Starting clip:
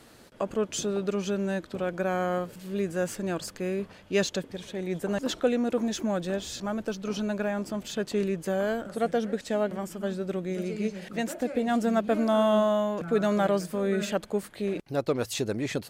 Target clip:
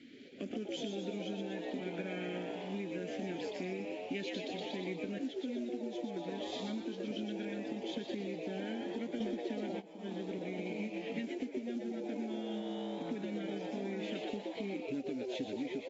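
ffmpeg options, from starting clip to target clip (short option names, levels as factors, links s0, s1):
-filter_complex "[0:a]asplit=3[s0][s1][s2];[s0]afade=t=out:st=1.44:d=0.02[s3];[s1]asplit=2[s4][s5];[s5]adelay=23,volume=0.355[s6];[s4][s6]amix=inputs=2:normalize=0,afade=t=in:st=1.44:d=0.02,afade=t=out:st=2.1:d=0.02[s7];[s2]afade=t=in:st=2.1:d=0.02[s8];[s3][s7][s8]amix=inputs=3:normalize=0,asettb=1/sr,asplit=3[s9][s10][s11];[s9]atrim=end=10.384[s12];[s10]atrim=start=10.38:end=11.03,asetpts=PTS-STARTPTS,afade=t=in:d=0.004:c=qsin,afade=t=out:st=0.646:d=0.004:c=qsin,adynamicequalizer=threshold=0.0141:dfrequency=430:dqfactor=0.98:tfrequency=430:tqfactor=0.98:attack=5:release=100:ratio=0.375:range=1.5:mode=cutabove:tftype=bell[s13];[s11]atrim=start=11.026[s14];[s12][s13]acrossfade=d=0.004:c1=hsin:c2=qsin[s15];[s15][s14]acrossfade=d=0.004:c1=qsin:c2=hsin,asplit=3[s16][s17][s18];[s16]bandpass=f=270:t=q:w=8,volume=1[s19];[s17]bandpass=f=2290:t=q:w=8,volume=0.501[s20];[s18]bandpass=f=3010:t=q:w=8,volume=0.355[s21];[s19][s20][s21]amix=inputs=3:normalize=0,asplit=9[s22][s23][s24][s25][s26][s27][s28][s29][s30];[s23]adelay=121,afreqshift=120,volume=0.631[s31];[s24]adelay=242,afreqshift=240,volume=0.367[s32];[s25]adelay=363,afreqshift=360,volume=0.211[s33];[s26]adelay=484,afreqshift=480,volume=0.123[s34];[s27]adelay=605,afreqshift=600,volume=0.0716[s35];[s28]adelay=726,afreqshift=720,volume=0.0412[s36];[s29]adelay=847,afreqshift=840,volume=0.024[s37];[s30]adelay=968,afreqshift=960,volume=0.014[s38];[s22][s31][s32][s33][s34][s35][s36][s37][s38]amix=inputs=9:normalize=0,asplit=3[s39][s40][s41];[s39]afade=t=out:st=9.2:d=0.02[s42];[s40]aeval=exprs='0.299*sin(PI/2*5.62*val(0)/0.299)':c=same,afade=t=in:st=9.2:d=0.02,afade=t=out:st=9.79:d=0.02[s43];[s41]afade=t=in:st=9.79:d=0.02[s44];[s42][s43][s44]amix=inputs=3:normalize=0,acrusher=bits=6:mode=log:mix=0:aa=0.000001,acompressor=threshold=0.00562:ratio=16,equalizer=f=1100:w=4.6:g=-9.5,volume=2.99" -ar 22050 -c:a aac -b:a 24k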